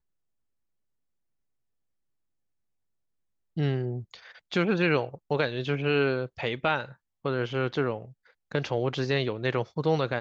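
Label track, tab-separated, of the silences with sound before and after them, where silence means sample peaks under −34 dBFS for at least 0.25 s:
4.140000	4.520000	silence
6.850000	7.250000	silence
8.050000	8.520000	silence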